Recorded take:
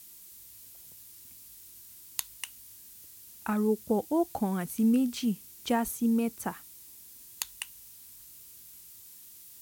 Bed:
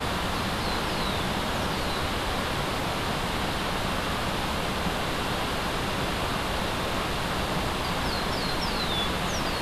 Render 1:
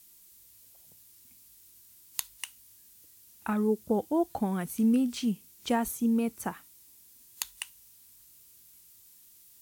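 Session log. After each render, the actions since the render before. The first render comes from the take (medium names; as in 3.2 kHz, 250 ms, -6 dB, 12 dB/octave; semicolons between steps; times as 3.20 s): noise print and reduce 6 dB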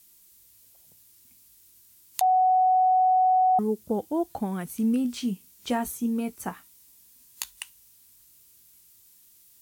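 2.21–3.59 s: bleep 744 Hz -17 dBFS; 5.03–7.50 s: doubling 16 ms -7.5 dB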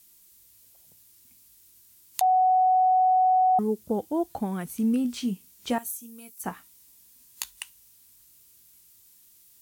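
5.78–6.44 s: pre-emphasis filter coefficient 0.9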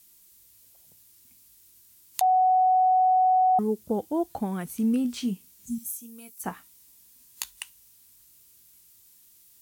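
5.65–5.93 s: spectral replace 250–6200 Hz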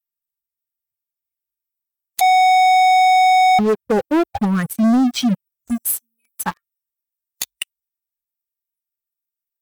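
expander on every frequency bin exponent 2; waveshaping leveller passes 5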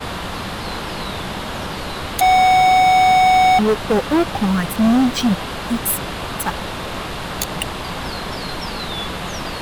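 add bed +1.5 dB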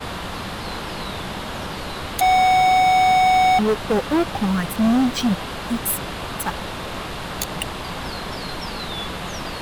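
trim -3 dB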